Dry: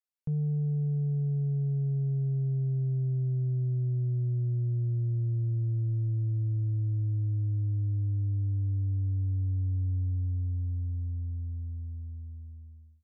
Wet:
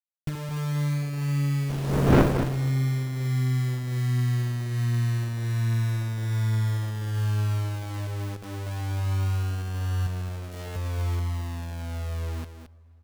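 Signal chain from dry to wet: fade out at the end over 0.79 s; 1.69–2.47 s: wind noise 610 Hz -25 dBFS; hum notches 50/100/150 Hz; in parallel at +2 dB: compression 10:1, threshold -38 dBFS, peak gain reduction 24.5 dB; on the sum: bit crusher 6-bit; 10.05–10.76 s: doubling 16 ms -2 dB; delay 218 ms -9 dB; on a send at -21.5 dB: reverberation RT60 3.3 s, pre-delay 77 ms; on the sum: sliding maximum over 33 samples

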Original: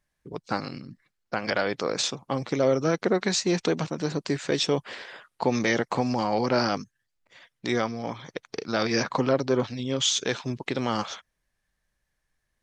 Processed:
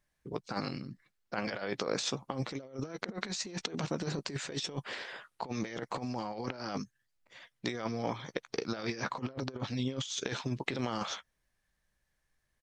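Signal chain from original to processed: doubling 15 ms -13.5 dB; compressor with a negative ratio -29 dBFS, ratio -0.5; trim -6 dB

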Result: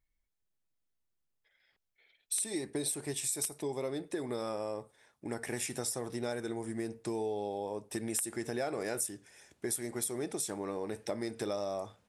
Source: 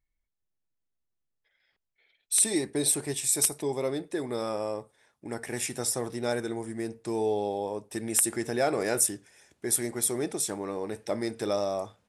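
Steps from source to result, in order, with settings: compression 4:1, threshold -33 dBFS, peak gain reduction 12.5 dB

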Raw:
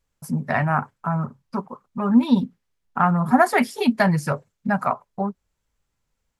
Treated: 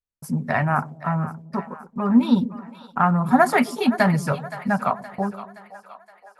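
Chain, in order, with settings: gate with hold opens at -43 dBFS; two-band feedback delay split 540 Hz, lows 129 ms, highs 520 ms, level -14.5 dB

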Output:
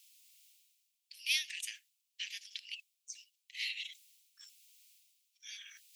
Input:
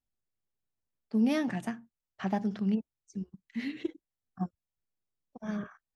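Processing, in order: steep high-pass 2.4 kHz 48 dB/octave; reverse; upward compressor, threshold -58 dBFS; reverse; trim +12 dB

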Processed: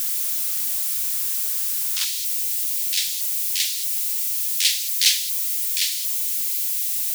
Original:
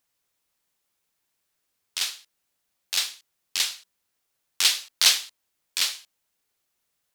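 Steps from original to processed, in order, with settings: zero-crossing glitches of -20.5 dBFS; steep high-pass 880 Hz 48 dB/octave, from 2.04 s 1.8 kHz

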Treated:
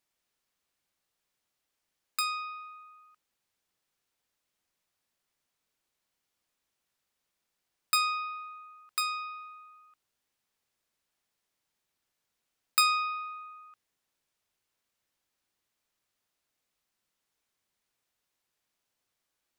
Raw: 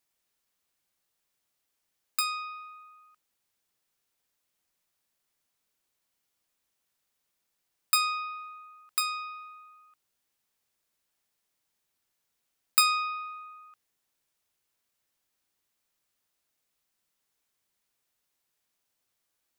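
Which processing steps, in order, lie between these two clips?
treble shelf 8.3 kHz -7 dB

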